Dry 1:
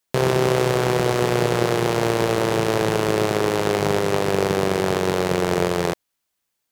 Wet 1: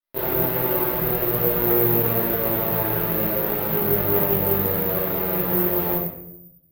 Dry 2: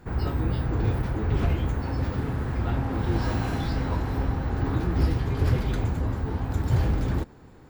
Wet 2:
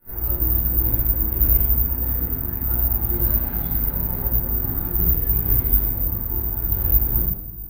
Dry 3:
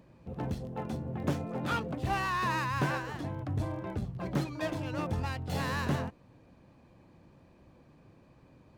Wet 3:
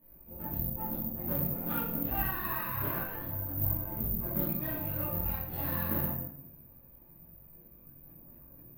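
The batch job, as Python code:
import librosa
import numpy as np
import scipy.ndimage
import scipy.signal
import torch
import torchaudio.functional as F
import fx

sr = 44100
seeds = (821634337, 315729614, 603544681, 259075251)

y = fx.chorus_voices(x, sr, voices=6, hz=1.0, base_ms=20, depth_ms=3.2, mix_pct=60)
y = fx.air_absorb(y, sr, metres=220.0)
y = fx.room_shoebox(y, sr, seeds[0], volume_m3=190.0, walls='mixed', distance_m=2.6)
y = (np.kron(scipy.signal.resample_poly(y, 1, 3), np.eye(3)[0]) * 3)[:len(y)]
y = fx.doppler_dist(y, sr, depth_ms=0.1)
y = y * 10.0 ** (-10.5 / 20.0)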